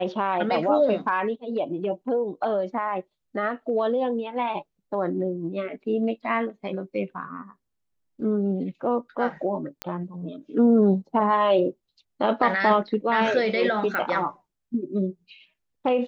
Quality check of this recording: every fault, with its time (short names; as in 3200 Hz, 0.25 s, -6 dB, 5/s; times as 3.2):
9.82 pop -12 dBFS
13.95 pop -14 dBFS